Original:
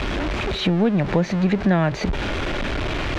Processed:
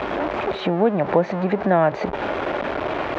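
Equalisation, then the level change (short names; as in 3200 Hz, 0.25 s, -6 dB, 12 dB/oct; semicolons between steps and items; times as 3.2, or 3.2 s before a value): band-pass 710 Hz, Q 1.1; +7.0 dB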